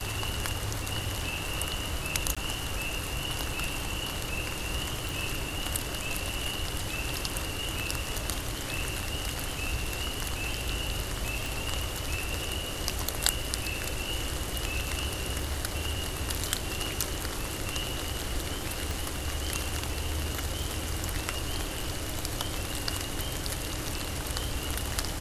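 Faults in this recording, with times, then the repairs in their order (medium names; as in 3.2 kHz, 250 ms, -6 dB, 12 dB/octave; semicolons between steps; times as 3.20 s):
crackle 22 per s -38 dBFS
2.35–2.37 s: dropout 16 ms
5.09 s: pop
11.46 s: pop
18.91 s: pop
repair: de-click; interpolate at 2.35 s, 16 ms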